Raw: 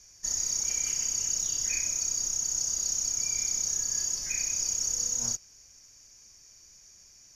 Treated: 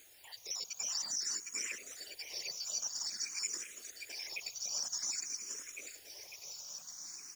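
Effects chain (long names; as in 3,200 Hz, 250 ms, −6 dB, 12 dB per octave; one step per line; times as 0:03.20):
time-frequency cells dropped at random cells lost 57%
Chebyshev band-pass filter 340–9,000 Hz, order 3
compressor whose output falls as the input rises −40 dBFS, ratio −0.5
random phases in short frames
background noise white −59 dBFS
bouncing-ball delay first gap 760 ms, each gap 0.85×, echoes 5
frequency shifter mixed with the dry sound +0.51 Hz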